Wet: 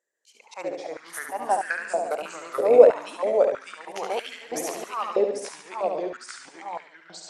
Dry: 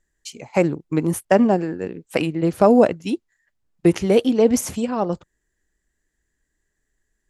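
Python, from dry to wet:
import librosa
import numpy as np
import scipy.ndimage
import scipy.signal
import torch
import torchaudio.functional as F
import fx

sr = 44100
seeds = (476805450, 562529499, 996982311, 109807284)

y = fx.echo_pitch(x, sr, ms=228, semitones=-2, count=3, db_per_echo=-3.0)
y = fx.auto_swell(y, sr, attack_ms=128.0)
y = fx.echo_feedback(y, sr, ms=71, feedback_pct=54, wet_db=-6)
y = fx.filter_held_highpass(y, sr, hz=3.1, low_hz=510.0, high_hz=1600.0)
y = F.gain(torch.from_numpy(y), -8.0).numpy()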